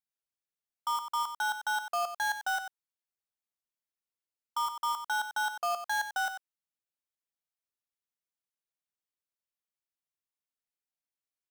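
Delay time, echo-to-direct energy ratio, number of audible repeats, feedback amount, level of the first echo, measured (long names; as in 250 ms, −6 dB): 93 ms, −10.0 dB, 1, repeats not evenly spaced, −10.0 dB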